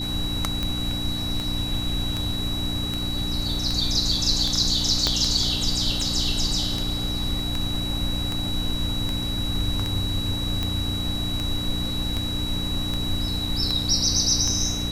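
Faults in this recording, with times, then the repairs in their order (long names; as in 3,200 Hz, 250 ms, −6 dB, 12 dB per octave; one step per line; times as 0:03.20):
mains hum 60 Hz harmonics 5 −31 dBFS
scratch tick 78 rpm −13 dBFS
whistle 3,900 Hz −29 dBFS
0:05.07: click −7 dBFS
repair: click removal
hum removal 60 Hz, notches 5
notch filter 3,900 Hz, Q 30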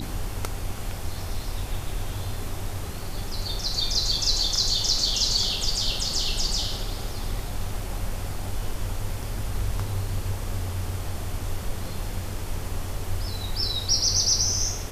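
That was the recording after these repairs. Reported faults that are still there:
0:05.07: click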